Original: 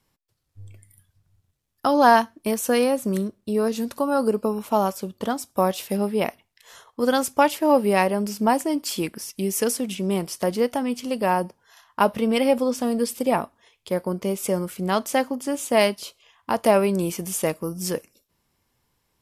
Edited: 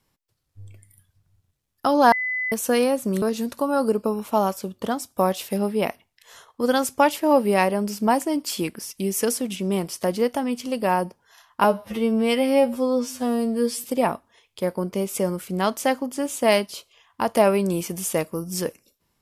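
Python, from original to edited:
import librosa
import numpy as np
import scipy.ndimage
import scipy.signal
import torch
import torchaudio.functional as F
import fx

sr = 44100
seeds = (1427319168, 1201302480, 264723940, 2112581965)

y = fx.edit(x, sr, fx.bleep(start_s=2.12, length_s=0.4, hz=2010.0, db=-23.0),
    fx.cut(start_s=3.22, length_s=0.39),
    fx.stretch_span(start_s=12.03, length_s=1.1, factor=2.0), tone=tone)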